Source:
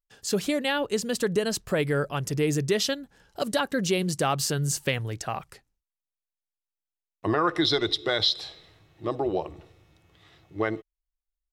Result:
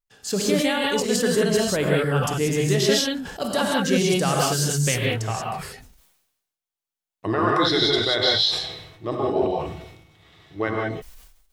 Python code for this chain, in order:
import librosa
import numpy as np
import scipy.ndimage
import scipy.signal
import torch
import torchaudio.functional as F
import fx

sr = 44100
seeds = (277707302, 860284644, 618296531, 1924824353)

y = fx.rev_gated(x, sr, seeds[0], gate_ms=210, shape='rising', drr_db=-2.5)
y = fx.sustainer(y, sr, db_per_s=59.0)